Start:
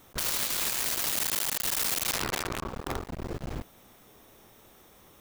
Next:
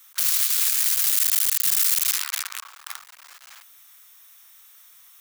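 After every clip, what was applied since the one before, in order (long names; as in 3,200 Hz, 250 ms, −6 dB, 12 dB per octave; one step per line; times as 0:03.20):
high-pass filter 1,200 Hz 24 dB per octave
high-shelf EQ 4,800 Hz +10.5 dB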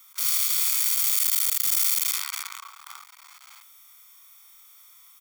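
harmonic and percussive parts rebalanced percussive −16 dB
comb filter 0.9 ms, depth 62%
level +1.5 dB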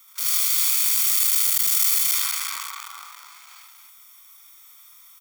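loudspeakers that aren't time-aligned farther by 26 metres −2 dB, 95 metres −5 dB
level that may fall only so fast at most 24 dB per second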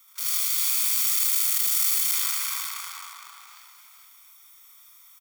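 single-tap delay 426 ms −6 dB
level −4 dB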